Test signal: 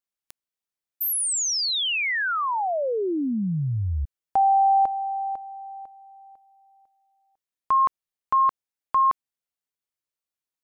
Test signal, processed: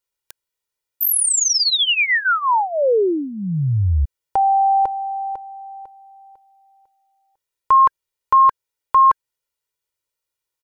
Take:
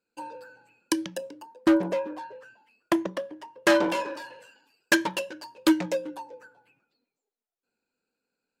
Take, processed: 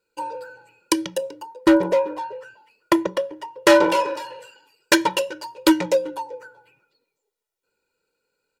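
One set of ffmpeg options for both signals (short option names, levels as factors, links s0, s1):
-af "bandreject=f=1600:w=23,aecho=1:1:2.1:0.71,volume=1.88"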